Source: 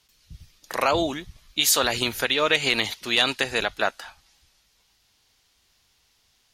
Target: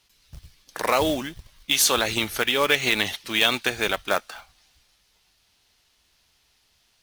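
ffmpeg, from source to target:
-af "asetrate=41013,aresample=44100,acrusher=bits=3:mode=log:mix=0:aa=0.000001"

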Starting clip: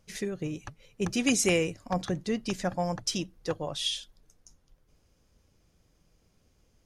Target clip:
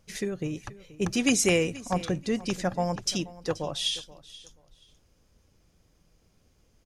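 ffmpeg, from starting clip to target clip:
-af "aecho=1:1:480|960:0.112|0.0258,volume=2dB"

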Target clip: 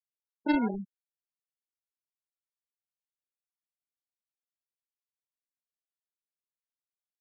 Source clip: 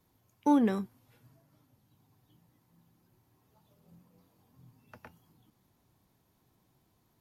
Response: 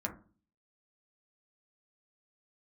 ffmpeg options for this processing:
-af "acrusher=samples=37:mix=1:aa=0.000001,afftfilt=real='re*gte(hypot(re,im),0.0708)':imag='im*gte(hypot(re,im),0.0708)':win_size=1024:overlap=0.75,volume=-2dB"

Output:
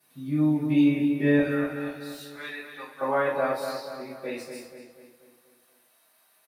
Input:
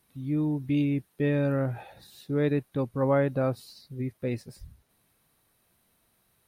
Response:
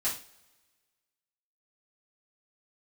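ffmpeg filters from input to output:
-filter_complex "[0:a]asetnsamples=n=441:p=0,asendcmd='1.39 highpass f 1400;3.01 highpass f 500',highpass=210,asplit=2[a][b];[b]adelay=241,lowpass=f=3.4k:p=1,volume=-6.5dB,asplit=2[c][d];[d]adelay=241,lowpass=f=3.4k:p=1,volume=0.51,asplit=2[e][f];[f]adelay=241,lowpass=f=3.4k:p=1,volume=0.51,asplit=2[g][h];[h]adelay=241,lowpass=f=3.4k:p=1,volume=0.51,asplit=2[i][j];[j]adelay=241,lowpass=f=3.4k:p=1,volume=0.51,asplit=2[k][l];[l]adelay=241,lowpass=f=3.4k:p=1,volume=0.51[m];[a][c][e][g][i][k][m]amix=inputs=7:normalize=0[n];[1:a]atrim=start_sample=2205,asetrate=41895,aresample=44100[o];[n][o]afir=irnorm=-1:irlink=0"

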